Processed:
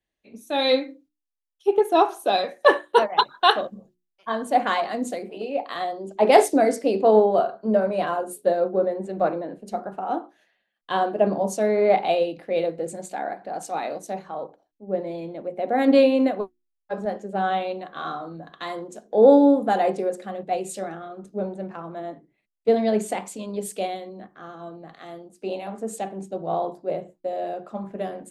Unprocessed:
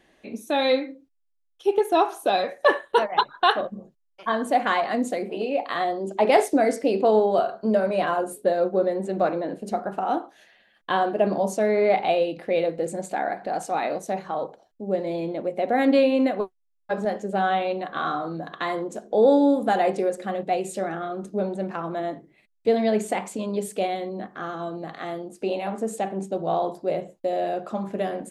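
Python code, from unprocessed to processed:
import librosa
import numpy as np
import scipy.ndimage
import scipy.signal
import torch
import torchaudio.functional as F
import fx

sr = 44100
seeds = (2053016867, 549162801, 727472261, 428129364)

y = fx.dynamic_eq(x, sr, hz=2000.0, q=1.2, threshold_db=-38.0, ratio=4.0, max_db=-3)
y = fx.hum_notches(y, sr, base_hz=60, count=6)
y = fx.band_widen(y, sr, depth_pct=70)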